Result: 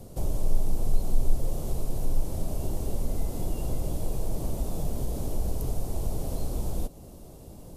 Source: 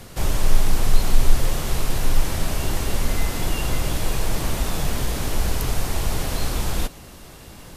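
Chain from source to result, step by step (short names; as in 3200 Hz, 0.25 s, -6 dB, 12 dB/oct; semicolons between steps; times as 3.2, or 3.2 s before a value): EQ curve 630 Hz 0 dB, 1700 Hz -21 dB, 10000 Hz -5 dB; in parallel at 0 dB: compressor, threshold -27 dBFS, peak gain reduction 19.5 dB; on the sum: gain -8.5 dB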